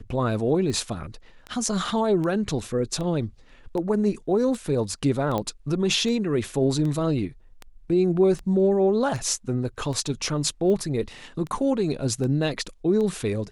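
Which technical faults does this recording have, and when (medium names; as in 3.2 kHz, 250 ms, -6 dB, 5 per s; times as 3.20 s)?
tick 78 rpm -21 dBFS
5.38 s: pop -14 dBFS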